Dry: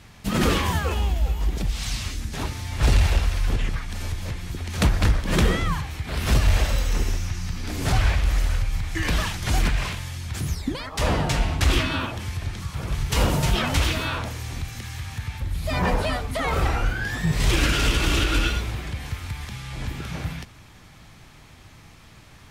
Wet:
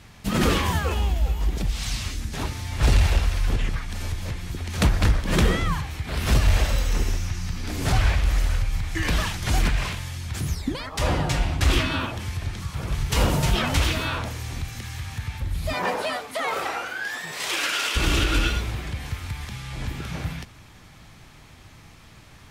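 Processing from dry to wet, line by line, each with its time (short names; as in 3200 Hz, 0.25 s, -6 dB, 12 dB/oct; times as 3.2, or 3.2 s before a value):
10.99–11.65 notch comb 220 Hz
15.72–17.95 HPF 310 Hz -> 760 Hz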